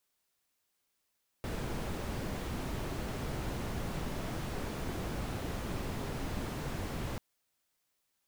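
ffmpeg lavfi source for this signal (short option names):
-f lavfi -i "anoisesrc=c=brown:a=0.07:d=5.74:r=44100:seed=1"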